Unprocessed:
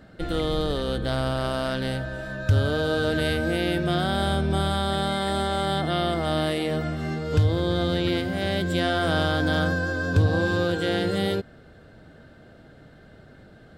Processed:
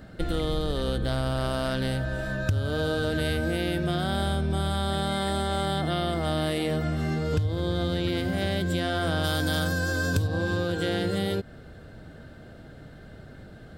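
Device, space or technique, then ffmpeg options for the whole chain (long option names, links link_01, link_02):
ASMR close-microphone chain: -filter_complex "[0:a]asplit=3[link_01][link_02][link_03];[link_01]afade=type=out:start_time=9.23:duration=0.02[link_04];[link_02]aemphasis=mode=production:type=75kf,afade=type=in:start_time=9.23:duration=0.02,afade=type=out:start_time=10.26:duration=0.02[link_05];[link_03]afade=type=in:start_time=10.26:duration=0.02[link_06];[link_04][link_05][link_06]amix=inputs=3:normalize=0,lowshelf=frequency=140:gain=6,acompressor=threshold=-25dB:ratio=5,highshelf=frequency=8000:gain=6.5,volume=1.5dB"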